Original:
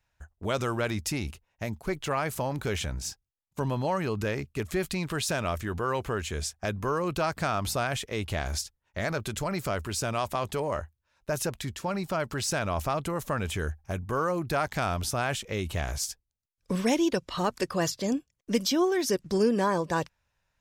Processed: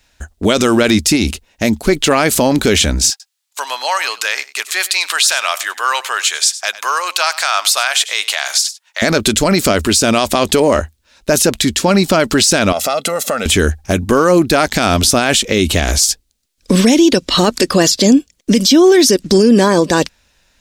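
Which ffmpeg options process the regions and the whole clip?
ffmpeg -i in.wav -filter_complex "[0:a]asettb=1/sr,asplit=3[link_01][link_02][link_03];[link_01]atrim=end=3.104[link_04];[link_02]atrim=start=3.1:end=9.02,asetpts=PTS-STARTPTS,afade=type=in:duration=0.004:curve=qsin,afade=type=out:start_time=5.916:duration=0.004:curve=qsin,highpass=frequency=850:width=0.5412,highpass=frequency=850:width=1.3066,aecho=1:1:97:0.112,atrim=end_sample=261072[link_05];[link_03]atrim=start=9.016[link_06];[link_04][link_05]acrossfade=duration=0.004:curve1=hsin:curve2=qsin[link_07];[link_07][link_06]acrossfade=duration=0.004:curve1=qsin:curve2=hsin,asettb=1/sr,asplit=3[link_08][link_09][link_10];[link_08]atrim=end=12.724[link_11];[link_09]atrim=start=12.72:end=13.46,asetpts=PTS-STARTPTS,afade=type=in:duration=0.004:curve=qsin,afade=type=out:start_time=0.736:duration=0.004:curve=qsin,highpass=310,aecho=1:1:1.5:0.75,atrim=end_sample=32634,acompressor=threshold=-37dB:ratio=2:attack=3.2:release=140:knee=1:detection=peak[link_12];[link_10]atrim=start=13.456[link_13];[link_11][link_12]acrossfade=duration=0.004:curve1=hsin:curve2=qsin[link_14];[link_14][link_13]acrossfade=duration=0.004:curve1=qsin:curve2=hsin,equalizer=frequency=125:width_type=o:width=1:gain=-11,equalizer=frequency=250:width_type=o:width=1:gain=8,equalizer=frequency=1000:width_type=o:width=1:gain=-5,equalizer=frequency=4000:width_type=o:width=1:gain=6,equalizer=frequency=8000:width_type=o:width=1:gain=5,alimiter=level_in=20.5dB:limit=-1dB:release=50:level=0:latency=1,volume=-1dB" out.wav

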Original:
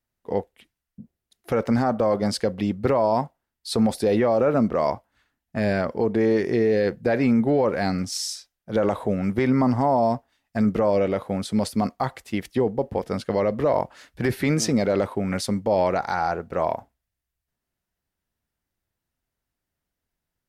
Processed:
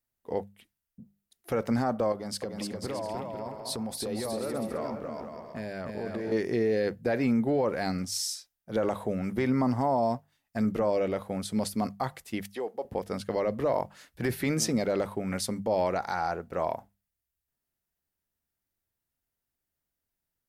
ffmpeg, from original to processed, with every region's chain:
ffmpeg -i in.wav -filter_complex "[0:a]asettb=1/sr,asplit=3[link_01][link_02][link_03];[link_01]atrim=end=2.124[link_04];[link_02]atrim=start=2.12:end=6.32,asetpts=PTS-STARTPTS,afade=type=in:duration=0.004:curve=qsin,afade=type=out:start_time=4.196:duration=0.004:curve=qsin,acompressor=threshold=-26dB:ratio=4:attack=3.2:release=140:knee=1:detection=peak,aecho=1:1:300|495|621.8|704.1|757.7:0.631|0.398|0.251|0.158|0.1,atrim=end_sample=185220[link_05];[link_03]atrim=start=6.316[link_06];[link_04][link_05]acrossfade=duration=0.004:curve1=hsin:curve2=qsin[link_07];[link_07][link_06]acrossfade=duration=0.004:curve1=qsin:curve2=hsin,asettb=1/sr,asplit=3[link_08][link_09][link_10];[link_08]atrim=end=12.424[link_11];[link_09]atrim=start=12.42:end=12.85,asetpts=PTS-STARTPTS,afade=type=in:duration=0.004:curve=qsin,afade=type=out:start_time=0.426:duration=0.004:curve=qsin,highpass=540,bandreject=frequency=970:width=16[link_12];[link_10]atrim=start=12.846[link_13];[link_11][link_12]acrossfade=duration=0.004:curve1=hsin:curve2=qsin[link_14];[link_14][link_13]acrossfade=duration=0.004:curve1=qsin:curve2=hsin,highshelf=frequency=9100:gain=11,bandreject=frequency=50:width_type=h:width=6,bandreject=frequency=100:width_type=h:width=6,bandreject=frequency=150:width_type=h:width=6,bandreject=frequency=200:width_type=h:width=6,volume=-6dB" out.wav

